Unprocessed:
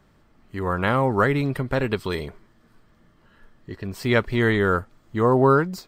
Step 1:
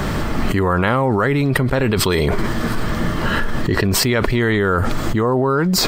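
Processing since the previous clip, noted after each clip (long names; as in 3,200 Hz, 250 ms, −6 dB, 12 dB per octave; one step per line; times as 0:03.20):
envelope flattener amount 100%
level −2 dB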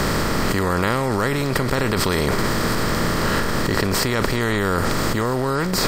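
compressor on every frequency bin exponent 0.4
level −8.5 dB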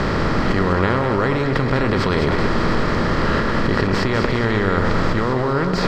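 high-frequency loss of the air 190 metres
echo with a time of its own for lows and highs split 1,400 Hz, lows 110 ms, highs 201 ms, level −6 dB
level +1.5 dB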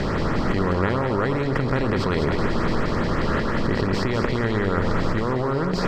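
auto-filter notch saw up 5.6 Hz 990–6,100 Hz
level −3.5 dB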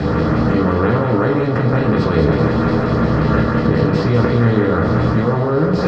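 convolution reverb RT60 0.40 s, pre-delay 3 ms, DRR −1.5 dB
level −7.5 dB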